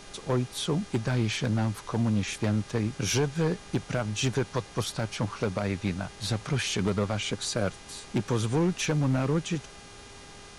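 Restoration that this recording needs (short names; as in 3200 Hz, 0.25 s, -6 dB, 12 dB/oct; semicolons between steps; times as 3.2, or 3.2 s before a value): clip repair -19.5 dBFS; de-hum 404.5 Hz, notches 17; denoiser 27 dB, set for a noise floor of -47 dBFS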